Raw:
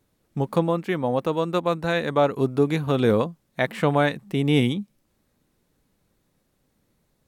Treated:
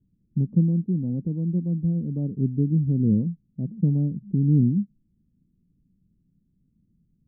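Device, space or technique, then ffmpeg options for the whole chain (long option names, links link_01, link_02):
the neighbour's flat through the wall: -af "lowpass=frequency=250:width=0.5412,lowpass=frequency=250:width=1.3066,equalizer=frequency=180:width_type=o:width=0.47:gain=5.5,volume=3dB"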